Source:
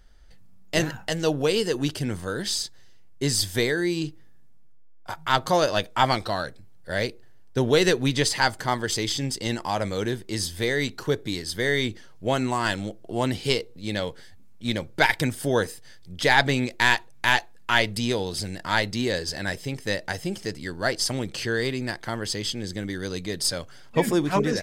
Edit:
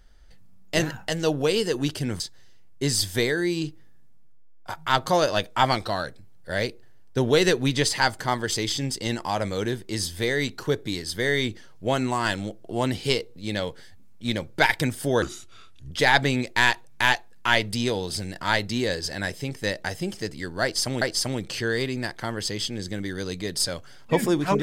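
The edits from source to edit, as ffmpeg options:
-filter_complex "[0:a]asplit=5[a][b][c][d][e];[a]atrim=end=2.202[f];[b]atrim=start=2.598:end=15.624[g];[c]atrim=start=15.62:end=16.14,asetpts=PTS-STARTPTS,asetrate=33516,aresample=44100[h];[d]atrim=start=16.136:end=21.252[i];[e]atrim=start=20.858[j];[f][g]acrossfade=d=0.004:c1=hsin:c2=hsin[k];[k][h]acrossfade=d=0.004:c1=hsin:c2=hsin[l];[l][i]acrossfade=d=0.004:c1=hsin:c2=hsin[m];[m][j]acrossfade=d=0.004:c1=hsin:c2=hsin"

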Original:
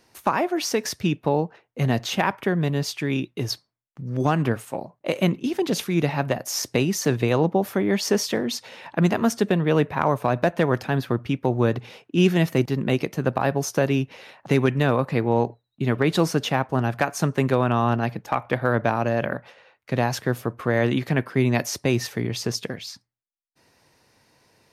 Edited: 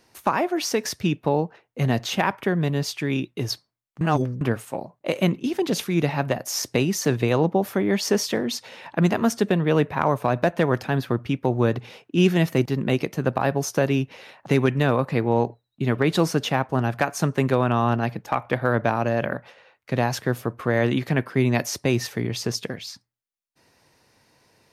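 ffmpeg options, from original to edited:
-filter_complex "[0:a]asplit=3[a][b][c];[a]atrim=end=4.012[d];[b]atrim=start=4.008:end=4.412,asetpts=PTS-STARTPTS,areverse[e];[c]atrim=start=4.408[f];[d][e]acrossfade=d=0.004:c1=hsin:c2=hsin[g];[g][f]acrossfade=d=0.004:c1=hsin:c2=hsin"

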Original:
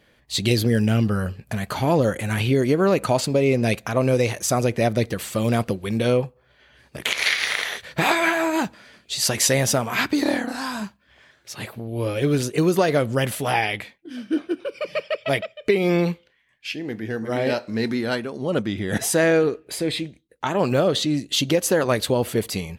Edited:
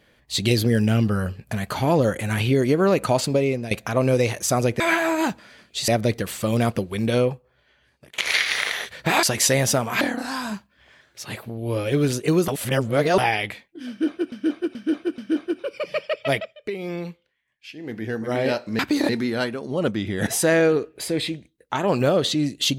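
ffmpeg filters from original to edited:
-filter_complex "[0:a]asplit=16[a][b][c][d][e][f][g][h][i][j][k][l][m][n][o][p];[a]atrim=end=3.71,asetpts=PTS-STARTPTS,afade=t=out:st=3.34:d=0.37:silence=0.177828[q];[b]atrim=start=3.71:end=4.802,asetpts=PTS-STARTPTS,afade=t=in:d=0.004:c=hsin:silence=0.177828[r];[c]atrim=start=8.148:end=9.232[s];[d]atrim=start=4.798:end=7.1,asetpts=PTS-STARTPTS,afade=t=out:st=1.272:d=1.03:silence=0.0668344[t];[e]atrim=start=7.1:end=8.152,asetpts=PTS-STARTPTS,afade=t=in:d=0.004:c=hsin:silence=0.0668344[u];[f]atrim=start=9.228:end=10.012[v];[g]atrim=start=10.308:end=12.782[w];[h]atrim=start=12.778:end=13.482,asetpts=PTS-STARTPTS,areverse[x];[i]atrim=start=13.478:end=14.622[y];[j]atrim=start=14.188:end=14.622[z];[k]atrim=start=14.188:end=14.622[aa];[l]atrim=start=14.188:end=15.65,asetpts=PTS-STARTPTS,afade=t=out:st=1.202:d=0.26:silence=0.298538[ab];[m]atrim=start=15.65:end=16.74,asetpts=PTS-STARTPTS,volume=-10.5dB[ac];[n]atrim=start=16.74:end=17.802,asetpts=PTS-STARTPTS,afade=t=in:d=0.26:silence=0.298538[ad];[o]atrim=start=10.008:end=10.312[ae];[p]atrim=start=17.798[af];[q][r]concat=n=2:v=0:a=1[ag];[ag][s]acrossfade=d=0.004:c1=hsin:c2=hsin[ah];[t][u]concat=n=2:v=0:a=1[ai];[ah][ai]acrossfade=d=0.004:c1=hsin:c2=hsin[aj];[aj][v]acrossfade=d=0.004:c1=hsin:c2=hsin[ak];[ak][w]acrossfade=d=0.004:c1=hsin:c2=hsin[al];[al][x]acrossfade=d=0.004:c1=hsin:c2=hsin[am];[am][y]acrossfade=d=0.004:c1=hsin:c2=hsin[an];[an][z]acrossfade=d=0.004:c1=hsin:c2=hsin[ao];[ao][aa]acrossfade=d=0.004:c1=hsin:c2=hsin[ap];[ab][ac][ad]concat=n=3:v=0:a=1[aq];[ap][aq]acrossfade=d=0.004:c1=hsin:c2=hsin[ar];[ar][ae]acrossfade=d=0.004:c1=hsin:c2=hsin[as];[as][af]acrossfade=d=0.004:c1=hsin:c2=hsin"

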